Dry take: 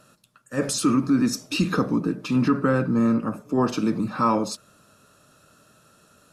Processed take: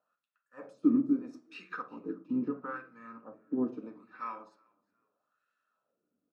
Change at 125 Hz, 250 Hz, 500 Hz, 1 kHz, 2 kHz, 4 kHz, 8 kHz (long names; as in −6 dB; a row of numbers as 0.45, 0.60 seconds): −24.5 dB, −10.5 dB, −15.0 dB, −16.0 dB, −14.0 dB, below −25 dB, below −40 dB